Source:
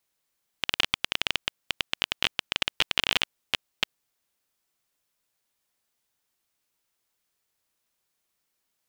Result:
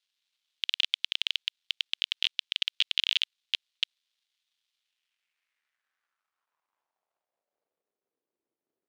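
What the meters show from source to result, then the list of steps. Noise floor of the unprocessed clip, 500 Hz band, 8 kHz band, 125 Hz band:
−79 dBFS, below −30 dB, −8.5 dB, below −40 dB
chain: tilt shelving filter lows −9 dB, about 910 Hz
surface crackle 550 per second −55 dBFS
band-pass filter sweep 3,500 Hz → 360 Hz, 0:04.73–0:08.20
level −6 dB

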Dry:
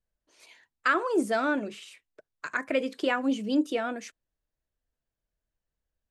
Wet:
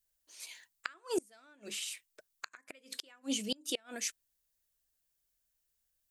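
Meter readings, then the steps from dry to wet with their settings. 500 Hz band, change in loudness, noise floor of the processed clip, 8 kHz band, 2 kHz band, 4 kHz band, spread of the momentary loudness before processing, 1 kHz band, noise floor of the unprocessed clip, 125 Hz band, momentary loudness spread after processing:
−12.5 dB, −11.5 dB, −81 dBFS, +8.0 dB, −16.0 dB, +1.0 dB, 14 LU, −20.0 dB, below −85 dBFS, can't be measured, 13 LU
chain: first-order pre-emphasis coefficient 0.9
gate with flip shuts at −34 dBFS, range −31 dB
level +12.5 dB

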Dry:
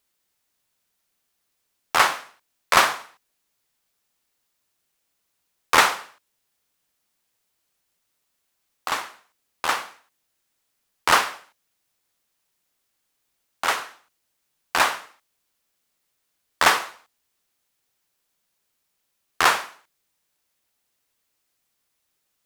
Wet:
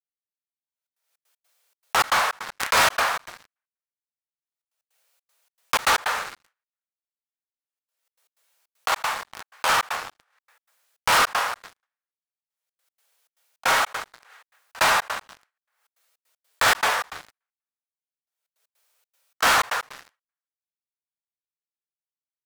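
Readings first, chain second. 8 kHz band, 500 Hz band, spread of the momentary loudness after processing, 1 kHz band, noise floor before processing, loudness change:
+1.5 dB, +0.5 dB, 16 LU, +0.5 dB, −75 dBFS, −1.0 dB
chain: echo with shifted repeats 123 ms, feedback 61%, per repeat +120 Hz, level −21 dB
dense smooth reverb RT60 0.94 s, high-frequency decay 0.8×, pre-delay 0 ms, DRR −3.5 dB
noise gate −45 dBFS, range −13 dB
Chebyshev high-pass filter 430 Hz, order 8
leveller curve on the samples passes 5
gate pattern ".x.xxx.xx.xx" 156 BPM −60 dB
background raised ahead of every attack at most 65 dB per second
level −15 dB

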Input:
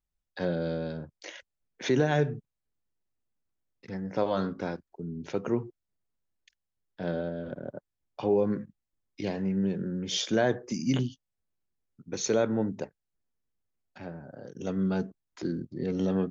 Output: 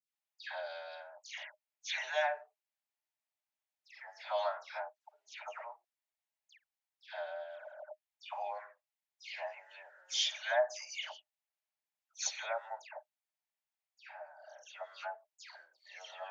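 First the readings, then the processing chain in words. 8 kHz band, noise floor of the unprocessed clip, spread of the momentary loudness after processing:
can't be measured, −85 dBFS, 21 LU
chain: Chebyshev high-pass with heavy ripple 600 Hz, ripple 6 dB
all-pass dispersion lows, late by 149 ms, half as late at 2,300 Hz
level +1.5 dB

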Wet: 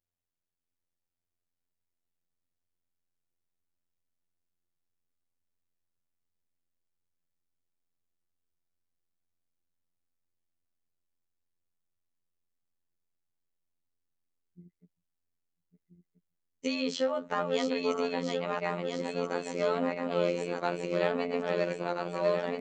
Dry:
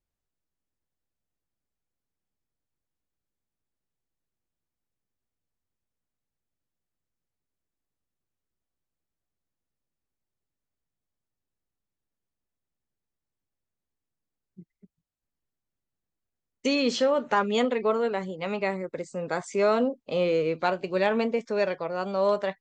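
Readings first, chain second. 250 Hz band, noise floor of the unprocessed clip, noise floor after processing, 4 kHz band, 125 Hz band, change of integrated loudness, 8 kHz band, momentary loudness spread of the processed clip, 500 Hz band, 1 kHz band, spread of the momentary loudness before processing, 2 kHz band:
−4.5 dB, below −85 dBFS, below −85 dBFS, −4.5 dB, −2.5 dB, −5.0 dB, −4.0 dB, 4 LU, −5.0 dB, −5.5 dB, 8 LU, −5.0 dB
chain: feedback delay that plays each chunk backwards 665 ms, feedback 71%, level −4 dB
phases set to zero 87.1 Hz
level −4.5 dB

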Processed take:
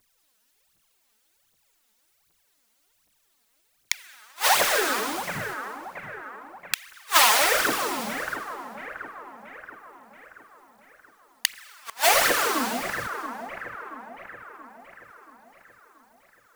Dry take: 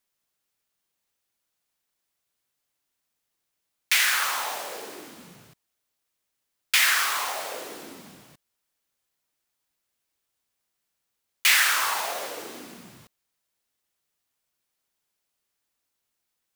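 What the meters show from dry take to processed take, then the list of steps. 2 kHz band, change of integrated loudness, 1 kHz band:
0.0 dB, −2.0 dB, +6.5 dB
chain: phase shifter 1.3 Hz, delay 4.8 ms, feedback 80%
echo with a time of its own for lows and highs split 1,700 Hz, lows 679 ms, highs 199 ms, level −11.5 dB
gate with flip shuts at −9 dBFS, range −38 dB
level +7 dB

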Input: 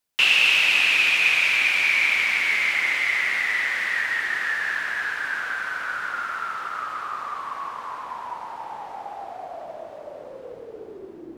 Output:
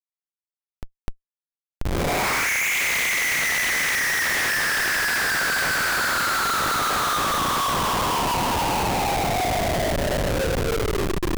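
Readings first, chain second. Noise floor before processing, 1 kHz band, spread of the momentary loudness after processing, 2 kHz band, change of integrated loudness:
−41 dBFS, +7.5 dB, 4 LU, −2.0 dB, −1.0 dB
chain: reverb whose tail is shaped and stops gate 80 ms rising, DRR −2 dB
low-pass filter sweep 210 Hz → 4,200 Hz, 0:01.67–0:02.86
comparator with hysteresis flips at −33.5 dBFS

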